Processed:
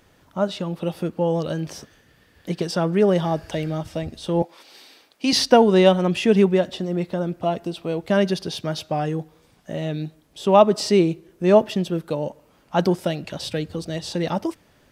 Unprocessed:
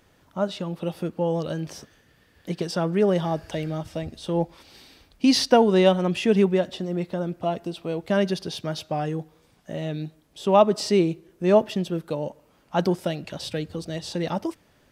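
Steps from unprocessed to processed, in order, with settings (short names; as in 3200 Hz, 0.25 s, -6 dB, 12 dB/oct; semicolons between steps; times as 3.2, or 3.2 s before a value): 4.42–5.33 HPF 370 Hz 12 dB/oct; gain +3 dB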